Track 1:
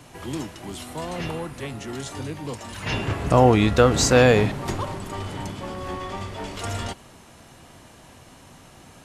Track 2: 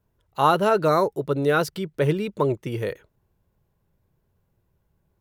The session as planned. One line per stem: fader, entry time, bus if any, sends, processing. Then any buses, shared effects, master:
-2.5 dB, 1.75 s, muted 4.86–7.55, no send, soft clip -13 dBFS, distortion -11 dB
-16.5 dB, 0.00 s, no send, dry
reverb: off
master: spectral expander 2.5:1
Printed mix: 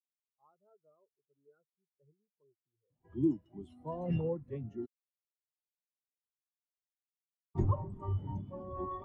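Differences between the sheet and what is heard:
stem 1: entry 1.75 s -> 2.90 s; stem 2 -16.5 dB -> -27.5 dB

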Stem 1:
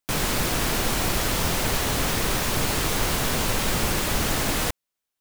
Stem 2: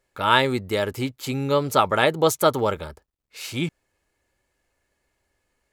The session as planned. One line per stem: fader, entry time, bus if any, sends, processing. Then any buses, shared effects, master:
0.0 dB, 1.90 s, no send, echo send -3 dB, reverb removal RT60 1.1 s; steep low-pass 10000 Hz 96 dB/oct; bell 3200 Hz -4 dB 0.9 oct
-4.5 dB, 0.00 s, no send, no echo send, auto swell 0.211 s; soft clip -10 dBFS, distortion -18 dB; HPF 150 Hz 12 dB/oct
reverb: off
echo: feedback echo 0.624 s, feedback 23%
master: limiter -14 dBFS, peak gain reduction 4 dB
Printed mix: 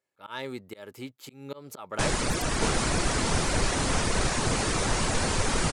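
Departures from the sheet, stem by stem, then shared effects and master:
stem 2 -4.5 dB -> -11.5 dB; master: missing limiter -14 dBFS, peak gain reduction 4 dB

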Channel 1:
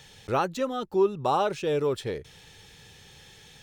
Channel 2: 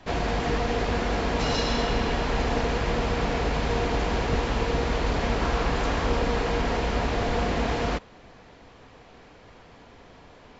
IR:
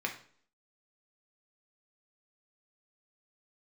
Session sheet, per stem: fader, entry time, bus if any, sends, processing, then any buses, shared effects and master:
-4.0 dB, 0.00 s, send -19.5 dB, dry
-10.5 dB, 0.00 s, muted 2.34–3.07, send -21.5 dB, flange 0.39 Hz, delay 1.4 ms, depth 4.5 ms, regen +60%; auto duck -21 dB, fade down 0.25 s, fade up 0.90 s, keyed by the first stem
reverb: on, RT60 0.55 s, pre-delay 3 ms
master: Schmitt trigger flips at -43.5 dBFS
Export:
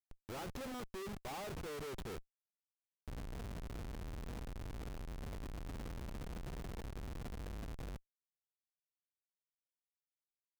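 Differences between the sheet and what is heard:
stem 1 -4.0 dB -> -12.0 dB; stem 2 -10.5 dB -> -19.0 dB

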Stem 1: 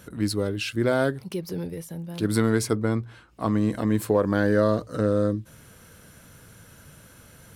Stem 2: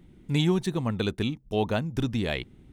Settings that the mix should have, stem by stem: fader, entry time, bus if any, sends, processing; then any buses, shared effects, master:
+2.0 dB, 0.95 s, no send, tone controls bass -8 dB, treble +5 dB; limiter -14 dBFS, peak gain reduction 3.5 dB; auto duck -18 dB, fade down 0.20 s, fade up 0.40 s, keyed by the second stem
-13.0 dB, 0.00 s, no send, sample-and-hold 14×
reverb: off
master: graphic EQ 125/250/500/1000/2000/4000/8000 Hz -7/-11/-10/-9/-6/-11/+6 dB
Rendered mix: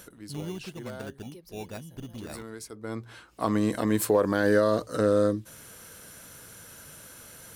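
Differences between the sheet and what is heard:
stem 1: entry 0.95 s -> 0.00 s; master: missing graphic EQ 125/250/500/1000/2000/4000/8000 Hz -7/-11/-10/-9/-6/-11/+6 dB

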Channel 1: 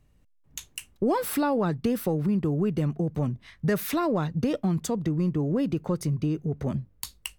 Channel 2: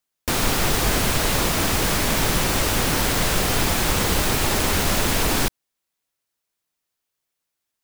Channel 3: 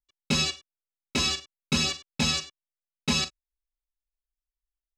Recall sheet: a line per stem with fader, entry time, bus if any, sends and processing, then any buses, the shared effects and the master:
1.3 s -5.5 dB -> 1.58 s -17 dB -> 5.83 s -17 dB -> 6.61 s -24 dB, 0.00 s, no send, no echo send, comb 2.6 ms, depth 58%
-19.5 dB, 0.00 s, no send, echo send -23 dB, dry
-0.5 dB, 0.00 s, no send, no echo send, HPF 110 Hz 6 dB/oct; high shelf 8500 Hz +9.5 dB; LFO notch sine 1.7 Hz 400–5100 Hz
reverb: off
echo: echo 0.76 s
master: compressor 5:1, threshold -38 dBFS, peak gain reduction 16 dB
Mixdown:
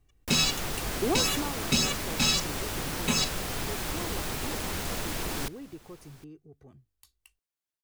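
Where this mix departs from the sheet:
stem 2 -19.5 dB -> -12.5 dB; master: missing compressor 5:1, threshold -38 dBFS, peak gain reduction 16 dB

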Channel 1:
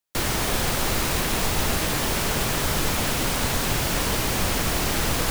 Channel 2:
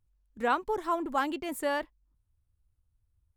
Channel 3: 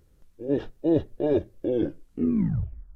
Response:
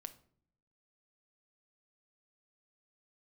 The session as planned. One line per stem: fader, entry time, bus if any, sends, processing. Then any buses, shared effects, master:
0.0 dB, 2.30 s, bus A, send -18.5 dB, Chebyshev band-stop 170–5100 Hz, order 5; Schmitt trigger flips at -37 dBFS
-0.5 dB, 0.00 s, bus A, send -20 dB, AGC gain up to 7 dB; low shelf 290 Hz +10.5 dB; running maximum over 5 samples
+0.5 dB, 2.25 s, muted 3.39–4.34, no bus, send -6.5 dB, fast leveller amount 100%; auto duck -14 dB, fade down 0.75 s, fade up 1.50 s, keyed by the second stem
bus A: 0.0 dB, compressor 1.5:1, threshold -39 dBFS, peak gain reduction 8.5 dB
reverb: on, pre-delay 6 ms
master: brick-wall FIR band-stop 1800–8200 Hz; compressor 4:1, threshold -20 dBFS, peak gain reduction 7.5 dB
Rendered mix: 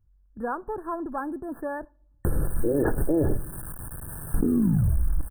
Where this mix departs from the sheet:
stem 1 0.0 dB -> -8.5 dB; stem 2: missing AGC gain up to 7 dB; reverb return +8.5 dB

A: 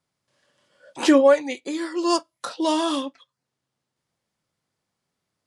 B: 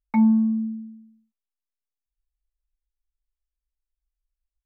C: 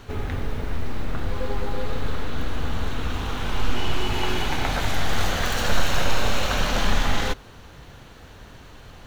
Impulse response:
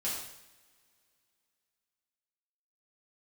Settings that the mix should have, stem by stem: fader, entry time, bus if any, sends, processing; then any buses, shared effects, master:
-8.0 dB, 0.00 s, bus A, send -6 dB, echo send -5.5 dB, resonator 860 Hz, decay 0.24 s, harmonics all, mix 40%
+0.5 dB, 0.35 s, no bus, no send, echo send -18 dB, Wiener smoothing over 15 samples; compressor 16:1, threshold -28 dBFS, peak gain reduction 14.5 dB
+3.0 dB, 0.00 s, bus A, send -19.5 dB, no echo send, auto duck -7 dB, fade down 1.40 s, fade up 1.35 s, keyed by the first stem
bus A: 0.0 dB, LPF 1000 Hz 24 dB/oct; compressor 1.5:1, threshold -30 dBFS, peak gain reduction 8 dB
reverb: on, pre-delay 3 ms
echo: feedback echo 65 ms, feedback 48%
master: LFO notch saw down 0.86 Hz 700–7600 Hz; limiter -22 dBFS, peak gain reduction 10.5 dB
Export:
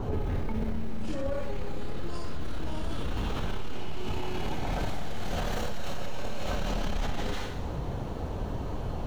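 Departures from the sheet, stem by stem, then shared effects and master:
stem C +3.0 dB -> +12.5 dB; master: missing LFO notch saw down 0.86 Hz 700–7600 Hz

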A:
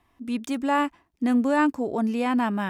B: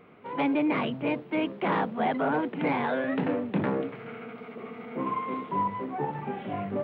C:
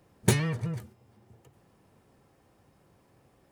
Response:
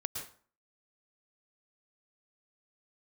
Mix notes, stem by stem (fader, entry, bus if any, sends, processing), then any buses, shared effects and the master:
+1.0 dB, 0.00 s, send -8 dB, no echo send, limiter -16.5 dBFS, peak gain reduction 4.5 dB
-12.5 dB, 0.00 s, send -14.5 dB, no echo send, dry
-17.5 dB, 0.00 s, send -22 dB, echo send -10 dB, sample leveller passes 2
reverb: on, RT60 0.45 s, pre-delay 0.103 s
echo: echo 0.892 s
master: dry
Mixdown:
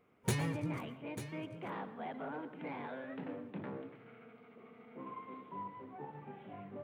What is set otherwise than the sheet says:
stem A: muted; stem B -12.5 dB -> -20.0 dB; reverb return +9.5 dB

